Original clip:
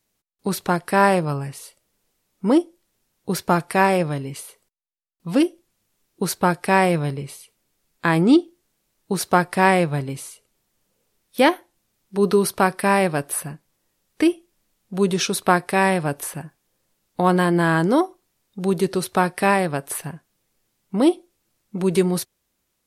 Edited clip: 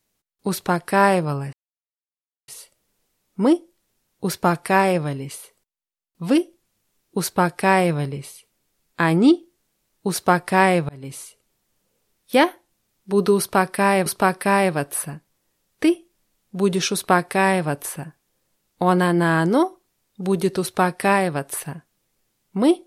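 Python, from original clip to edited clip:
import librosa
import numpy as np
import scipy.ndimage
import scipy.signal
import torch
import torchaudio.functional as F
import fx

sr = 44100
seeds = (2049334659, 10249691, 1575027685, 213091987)

y = fx.edit(x, sr, fx.insert_silence(at_s=1.53, length_s=0.95),
    fx.fade_in_span(start_s=9.94, length_s=0.3),
    fx.repeat(start_s=12.44, length_s=0.67, count=2), tone=tone)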